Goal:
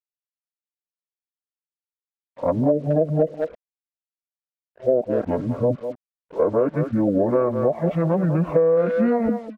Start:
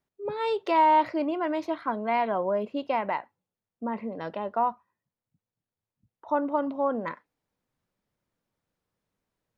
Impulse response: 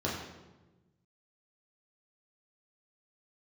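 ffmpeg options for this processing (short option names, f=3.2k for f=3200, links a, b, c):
-filter_complex "[0:a]areverse,asetrate=23361,aresample=44100,atempo=1.88775,equalizer=f=600:w=5.6:g=14,aecho=1:1:4.4:0.43,asplit=2[a][b];[b]adelay=200,highpass=300,lowpass=3.4k,asoftclip=type=hard:threshold=-15dB,volume=-10dB[c];[a][c]amix=inputs=2:normalize=0,adynamicequalizer=threshold=0.0178:dfrequency=300:dqfactor=0.79:tfrequency=300:tqfactor=0.79:attack=5:release=100:ratio=0.375:range=2:mode=cutabove:tftype=bell,acrusher=bits=8:mix=0:aa=0.5,acompressor=threshold=-26dB:ratio=10,lowpass=f=1.8k:p=1,dynaudnorm=f=210:g=5:m=11.5dB"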